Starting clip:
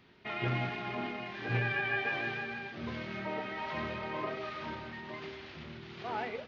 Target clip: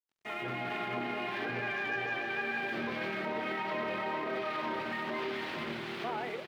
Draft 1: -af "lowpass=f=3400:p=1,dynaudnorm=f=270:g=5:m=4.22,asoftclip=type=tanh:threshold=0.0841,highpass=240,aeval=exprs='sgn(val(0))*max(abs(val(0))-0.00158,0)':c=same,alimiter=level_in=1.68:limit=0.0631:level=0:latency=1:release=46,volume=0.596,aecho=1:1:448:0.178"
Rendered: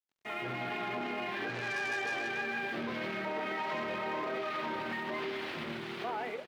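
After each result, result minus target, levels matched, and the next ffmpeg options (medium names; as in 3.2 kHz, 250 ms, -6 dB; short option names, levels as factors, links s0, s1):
saturation: distortion +11 dB; echo-to-direct -9.5 dB
-af "lowpass=f=3400:p=1,dynaudnorm=f=270:g=5:m=4.22,asoftclip=type=tanh:threshold=0.251,highpass=240,aeval=exprs='sgn(val(0))*max(abs(val(0))-0.00158,0)':c=same,alimiter=level_in=1.68:limit=0.0631:level=0:latency=1:release=46,volume=0.596,aecho=1:1:448:0.178"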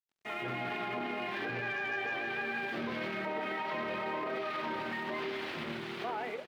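echo-to-direct -9.5 dB
-af "lowpass=f=3400:p=1,dynaudnorm=f=270:g=5:m=4.22,asoftclip=type=tanh:threshold=0.251,highpass=240,aeval=exprs='sgn(val(0))*max(abs(val(0))-0.00158,0)':c=same,alimiter=level_in=1.68:limit=0.0631:level=0:latency=1:release=46,volume=0.596,aecho=1:1:448:0.531"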